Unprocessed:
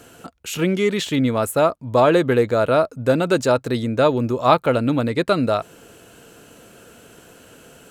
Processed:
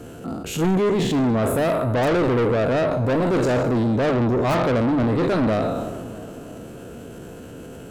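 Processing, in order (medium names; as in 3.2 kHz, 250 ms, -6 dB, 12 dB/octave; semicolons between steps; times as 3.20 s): spectral sustain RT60 0.78 s; hum notches 50/100/150/200 Hz; in parallel at -5 dB: integer overflow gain 2.5 dB; on the sum: tilt shelf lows +8 dB, about 650 Hz; saturation -14.5 dBFS, distortion -7 dB; transient shaper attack -5 dB, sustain +5 dB; on a send: feedback echo behind a low-pass 318 ms, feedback 55%, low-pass 1.3 kHz, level -17 dB; on the sum: peak limiter -16 dBFS, peak gain reduction 4.5 dB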